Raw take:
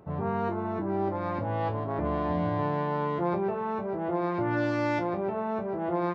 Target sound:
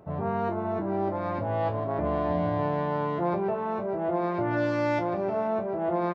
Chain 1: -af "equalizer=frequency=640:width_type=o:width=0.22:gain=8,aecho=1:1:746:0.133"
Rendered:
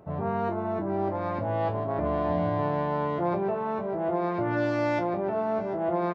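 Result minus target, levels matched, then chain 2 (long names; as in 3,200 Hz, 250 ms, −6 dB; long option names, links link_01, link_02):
echo 263 ms late
-af "equalizer=frequency=640:width_type=o:width=0.22:gain=8,aecho=1:1:483:0.133"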